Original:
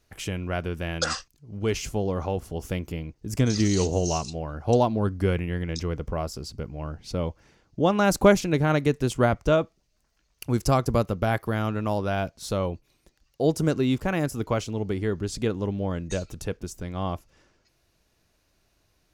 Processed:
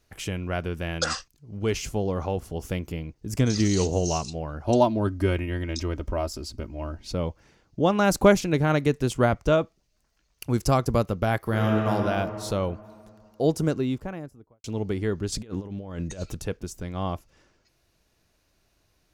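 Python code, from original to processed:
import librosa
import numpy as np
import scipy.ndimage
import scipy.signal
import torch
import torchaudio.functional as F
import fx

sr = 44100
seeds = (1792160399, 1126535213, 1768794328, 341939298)

y = fx.comb(x, sr, ms=3.2, depth=0.65, at=(4.64, 7.14))
y = fx.reverb_throw(y, sr, start_s=11.38, length_s=0.54, rt60_s=2.6, drr_db=-1.5)
y = fx.studio_fade_out(y, sr, start_s=13.42, length_s=1.22)
y = fx.over_compress(y, sr, threshold_db=-32.0, ratio=-0.5, at=(15.32, 16.37))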